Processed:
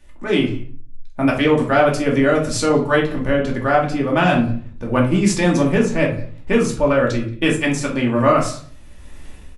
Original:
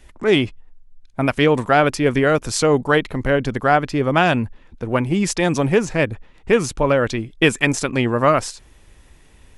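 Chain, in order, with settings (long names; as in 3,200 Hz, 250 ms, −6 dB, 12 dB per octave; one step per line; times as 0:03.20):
automatic gain control gain up to 12.5 dB
far-end echo of a speakerphone 180 ms, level −20 dB
rectangular room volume 310 cubic metres, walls furnished, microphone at 2.5 metres
level −7 dB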